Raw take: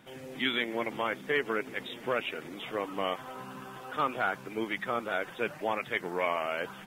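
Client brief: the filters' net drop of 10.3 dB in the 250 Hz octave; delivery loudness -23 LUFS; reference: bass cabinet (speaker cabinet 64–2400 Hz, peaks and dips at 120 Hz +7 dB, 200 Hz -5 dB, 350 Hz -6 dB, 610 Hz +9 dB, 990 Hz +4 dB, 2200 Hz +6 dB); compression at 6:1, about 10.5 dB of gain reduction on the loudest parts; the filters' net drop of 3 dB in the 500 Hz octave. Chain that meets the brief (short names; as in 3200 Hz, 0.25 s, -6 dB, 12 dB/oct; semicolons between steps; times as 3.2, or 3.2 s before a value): bell 250 Hz -6.5 dB; bell 500 Hz -8.5 dB; compressor 6:1, threshold -38 dBFS; speaker cabinet 64–2400 Hz, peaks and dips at 120 Hz +7 dB, 200 Hz -5 dB, 350 Hz -6 dB, 610 Hz +9 dB, 990 Hz +4 dB, 2200 Hz +6 dB; gain +17.5 dB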